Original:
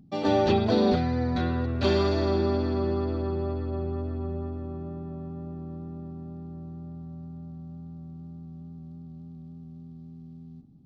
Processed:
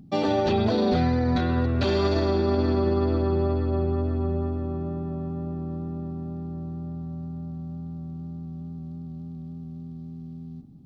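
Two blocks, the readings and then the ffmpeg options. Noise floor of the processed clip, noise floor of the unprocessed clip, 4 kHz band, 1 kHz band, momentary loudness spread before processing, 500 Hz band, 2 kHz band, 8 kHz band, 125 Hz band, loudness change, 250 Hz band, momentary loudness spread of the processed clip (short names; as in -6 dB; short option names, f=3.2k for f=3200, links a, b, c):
-39 dBFS, -45 dBFS, +1.0 dB, +1.5 dB, 21 LU, +2.0 dB, +2.0 dB, n/a, +4.0 dB, +1.0 dB, +2.5 dB, 16 LU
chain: -af "alimiter=limit=-21dB:level=0:latency=1:release=30,volume=6dB"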